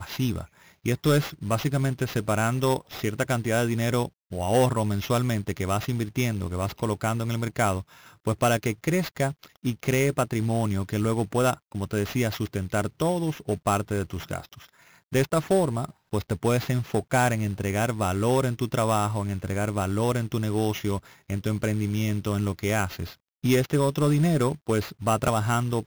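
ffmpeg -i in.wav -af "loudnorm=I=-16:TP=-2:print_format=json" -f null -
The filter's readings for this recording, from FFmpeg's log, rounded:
"input_i" : "-26.1",
"input_tp" : "-11.6",
"input_lra" : "2.6",
"input_thresh" : "-36.2",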